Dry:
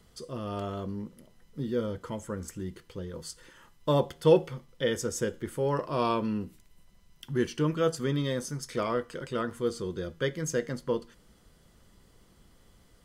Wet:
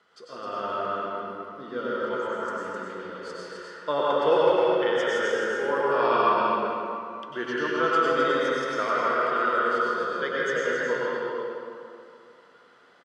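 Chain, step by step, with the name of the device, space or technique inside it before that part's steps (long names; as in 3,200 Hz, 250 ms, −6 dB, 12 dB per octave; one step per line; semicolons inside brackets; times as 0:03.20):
station announcement (band-pass filter 470–3,600 Hz; parametric band 1,400 Hz +10.5 dB 0.41 octaves; loudspeakers that aren't time-aligned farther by 55 metres −10 dB, 89 metres −5 dB; convolution reverb RT60 2.5 s, pre-delay 89 ms, DRR −6 dB)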